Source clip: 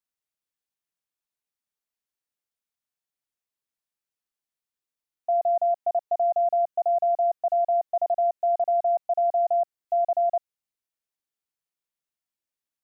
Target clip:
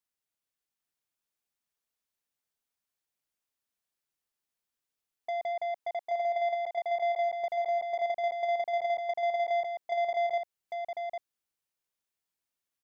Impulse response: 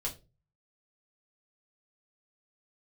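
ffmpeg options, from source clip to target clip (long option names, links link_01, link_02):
-filter_complex "[0:a]asplit=3[link_01][link_02][link_03];[link_01]afade=type=out:start_time=5.52:duration=0.02[link_04];[link_02]highpass=frequency=560:poles=1,afade=type=in:start_time=5.52:duration=0.02,afade=type=out:start_time=7.22:duration=0.02[link_05];[link_03]afade=type=in:start_time=7.22:duration=0.02[link_06];[link_04][link_05][link_06]amix=inputs=3:normalize=0,acompressor=threshold=-24dB:ratio=6,asoftclip=type=tanh:threshold=-30dB,aecho=1:1:800:0.708"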